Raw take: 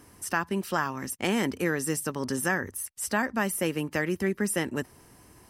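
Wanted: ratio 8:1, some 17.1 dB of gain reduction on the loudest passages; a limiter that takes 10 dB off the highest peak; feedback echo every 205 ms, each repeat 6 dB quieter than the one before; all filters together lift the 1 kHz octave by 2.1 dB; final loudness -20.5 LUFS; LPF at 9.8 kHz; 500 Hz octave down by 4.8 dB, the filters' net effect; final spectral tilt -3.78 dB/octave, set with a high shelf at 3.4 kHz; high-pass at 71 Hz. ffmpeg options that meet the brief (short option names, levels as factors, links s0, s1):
-af "highpass=71,lowpass=9800,equalizer=f=500:t=o:g=-7.5,equalizer=f=1000:t=o:g=5,highshelf=f=3400:g=-3.5,acompressor=threshold=0.0112:ratio=8,alimiter=level_in=2.51:limit=0.0631:level=0:latency=1,volume=0.398,aecho=1:1:205|410|615|820|1025|1230:0.501|0.251|0.125|0.0626|0.0313|0.0157,volume=14.1"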